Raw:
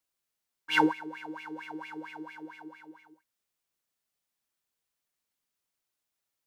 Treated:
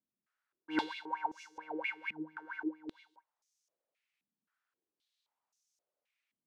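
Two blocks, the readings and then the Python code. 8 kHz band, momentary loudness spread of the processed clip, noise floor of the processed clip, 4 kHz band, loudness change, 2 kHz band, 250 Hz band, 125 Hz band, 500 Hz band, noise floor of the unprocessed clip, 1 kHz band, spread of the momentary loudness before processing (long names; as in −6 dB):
can't be measured, 11 LU, below −85 dBFS, −9.5 dB, −7.5 dB, −6.5 dB, −6.5 dB, −12.5 dB, −7.0 dB, below −85 dBFS, −5.5 dB, 21 LU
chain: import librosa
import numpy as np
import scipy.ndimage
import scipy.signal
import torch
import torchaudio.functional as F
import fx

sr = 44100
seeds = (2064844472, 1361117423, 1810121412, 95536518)

y = fx.filter_held_bandpass(x, sr, hz=3.8, low_hz=210.0, high_hz=6100.0)
y = F.gain(torch.from_numpy(y), 12.0).numpy()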